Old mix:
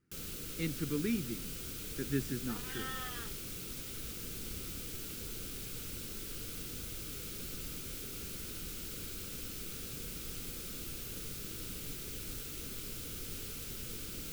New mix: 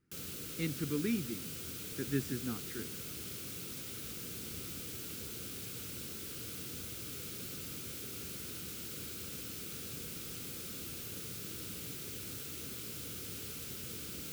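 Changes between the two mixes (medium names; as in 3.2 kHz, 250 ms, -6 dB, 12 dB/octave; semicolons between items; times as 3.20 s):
first sound: add high-pass 74 Hz 24 dB/octave; second sound: muted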